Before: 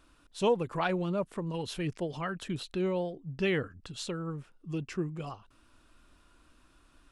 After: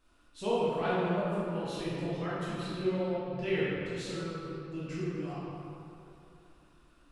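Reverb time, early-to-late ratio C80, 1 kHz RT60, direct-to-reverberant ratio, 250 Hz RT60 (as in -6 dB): 2.8 s, -2.0 dB, 2.9 s, -10.0 dB, 2.8 s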